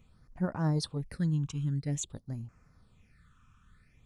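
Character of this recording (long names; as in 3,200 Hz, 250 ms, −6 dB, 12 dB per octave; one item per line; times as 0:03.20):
phaser sweep stages 8, 0.5 Hz, lowest notch 590–3,600 Hz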